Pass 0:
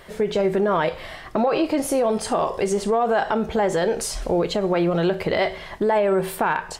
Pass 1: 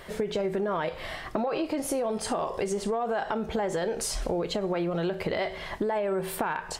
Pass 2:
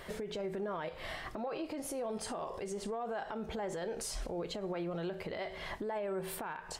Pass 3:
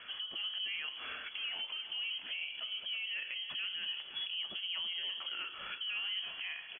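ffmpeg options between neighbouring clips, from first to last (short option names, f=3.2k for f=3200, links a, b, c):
-af "acompressor=threshold=-27dB:ratio=4"
-af "alimiter=level_in=3.5dB:limit=-24dB:level=0:latency=1:release=300,volume=-3.5dB,volume=-3dB"
-af "aecho=1:1:332|664|996|1328:0.299|0.122|0.0502|0.0206,lowpass=f=2.9k:t=q:w=0.5098,lowpass=f=2.9k:t=q:w=0.6013,lowpass=f=2.9k:t=q:w=0.9,lowpass=f=2.9k:t=q:w=2.563,afreqshift=-3400,volume=-1.5dB"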